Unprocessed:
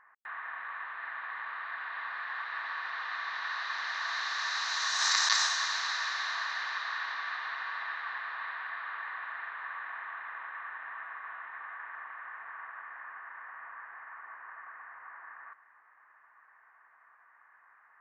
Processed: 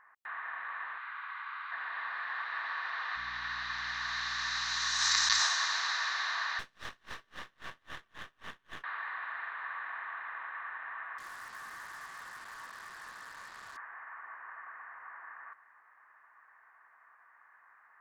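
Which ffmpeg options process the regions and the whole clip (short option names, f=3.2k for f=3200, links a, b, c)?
-filter_complex "[0:a]asettb=1/sr,asplit=3[a][b][c];[a]atrim=end=0.984[d];[b]atrim=start=0.98:end=1.72,asetpts=PTS-STARTPTS,afade=t=in:d=0.004:c=qsin,afade=t=out:st=0.736:d=0.004:c=qsin,highpass=f=1k:w=0.5412,highpass=f=1k:w=1.3066,bandreject=f=1.8k:w=8[e];[c]atrim=start=1.716[f];[d][e]acrossfade=d=0.004:c1=hsin:c2=qsin[g];[g][f]acrossfade=d=0.004:c1=qsin:c2=hsin,asettb=1/sr,asplit=3[h][i][j];[h]atrim=end=3.164[k];[i]atrim=start=3.16:end=5.4,asetpts=PTS-STARTPTS,afade=t=in:d=0.004:c=qsin,afade=t=out:st=2.236:d=0.004:c=qsin,highpass=f=1.2k:p=1,aeval=exprs='val(0)+0.00158*(sin(2*PI*60*n/s)+sin(2*PI*2*60*n/s)/2+sin(2*PI*3*60*n/s)/3+sin(2*PI*4*60*n/s)/4+sin(2*PI*5*60*n/s)/5)':c=same[l];[j]atrim=start=5.396[m];[k][l]acrossfade=d=0.004:c1=hsin:c2=qsin[n];[n][m]acrossfade=d=0.004:c1=qsin:c2=hsin,asettb=1/sr,asplit=3[o][p][q];[o]atrim=end=6.594[r];[p]atrim=start=6.59:end=8.84,asetpts=PTS-STARTPTS,afade=t=in:d=0.004:c=qsin,afade=t=out:st=2.246:d=0.004:c=qsin,aeval=exprs='max(val(0),0)':c=same,aeval=exprs='val(0)*pow(10,-35*(0.5-0.5*cos(2*PI*3.7*n/s))/20)':c=same[s];[q]atrim=start=8.836[t];[r][s]acrossfade=d=0.004:c1=hsin:c2=qsin[u];[u][t]acrossfade=d=0.004:c1=qsin:c2=hsin,asettb=1/sr,asplit=3[v][w][x];[v]atrim=end=11.184[y];[w]atrim=start=11.18:end=13.77,asetpts=PTS-STARTPTS,afade=t=in:d=0.004:c=qsin,afade=t=out:st=2.586:d=0.004:c=qsin,highpass=350,flanger=delay=18.5:depth=3:speed=2.9,acrusher=bits=7:mix=0:aa=0.5[z];[x]atrim=start=13.766[aa];[y][z]acrossfade=d=0.004:c1=hsin:c2=qsin[ab];[ab][aa]acrossfade=d=0.004:c1=qsin:c2=hsin"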